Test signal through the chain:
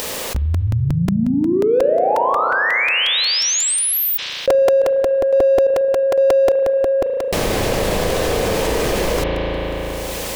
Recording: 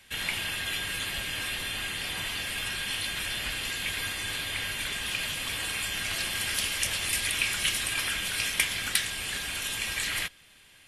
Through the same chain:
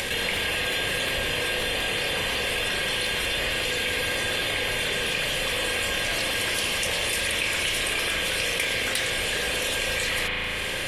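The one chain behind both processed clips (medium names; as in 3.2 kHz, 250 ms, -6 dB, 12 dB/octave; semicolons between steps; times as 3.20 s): peaking EQ 500 Hz +13.5 dB 0.63 oct; in parallel at -10 dB: saturation -22.5 dBFS; on the sum: treble shelf 8.9 kHz -5.5 dB; band-stop 1.4 kHz, Q 11; upward compressor, threshold -25 dBFS; spring tank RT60 2.3 s, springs 36 ms, chirp 75 ms, DRR 2.5 dB; crackling interface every 0.18 s, samples 128, repeat, from 0.36 s; level flattener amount 70%; trim -4 dB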